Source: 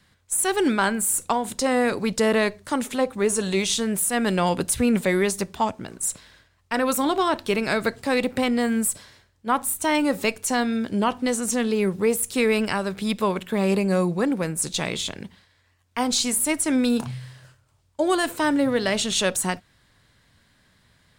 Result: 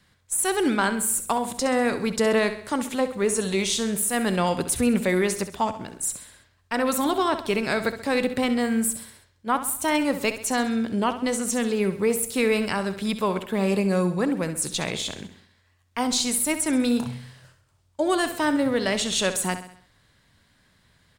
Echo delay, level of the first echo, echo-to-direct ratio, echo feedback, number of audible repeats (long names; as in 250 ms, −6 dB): 66 ms, −11.5 dB, −10.5 dB, 48%, 4